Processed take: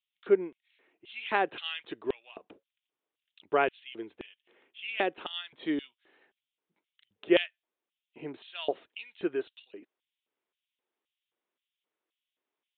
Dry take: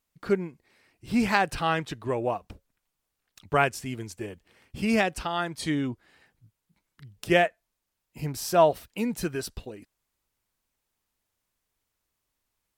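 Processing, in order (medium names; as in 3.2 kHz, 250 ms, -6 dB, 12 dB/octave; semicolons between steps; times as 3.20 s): LFO high-pass square 1.9 Hz 360–3100 Hz; resampled via 8 kHz; trim -5.5 dB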